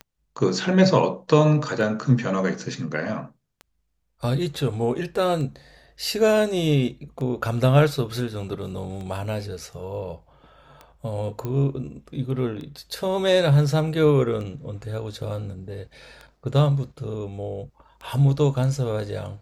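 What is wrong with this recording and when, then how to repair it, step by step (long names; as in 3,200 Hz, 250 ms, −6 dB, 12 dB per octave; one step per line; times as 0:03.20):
scratch tick 33 1/3 rpm −24 dBFS
0:11.45: click −17 dBFS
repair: click removal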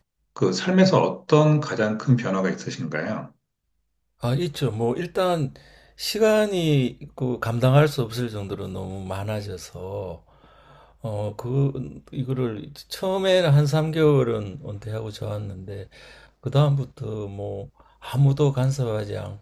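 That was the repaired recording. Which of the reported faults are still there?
none of them is left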